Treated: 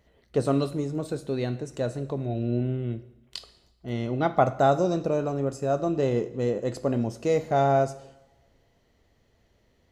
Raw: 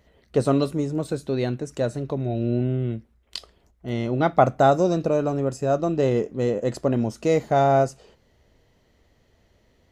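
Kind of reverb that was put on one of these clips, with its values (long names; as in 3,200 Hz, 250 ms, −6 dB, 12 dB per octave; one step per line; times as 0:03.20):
coupled-rooms reverb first 0.8 s, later 2.2 s, from −25 dB, DRR 11.5 dB
level −4 dB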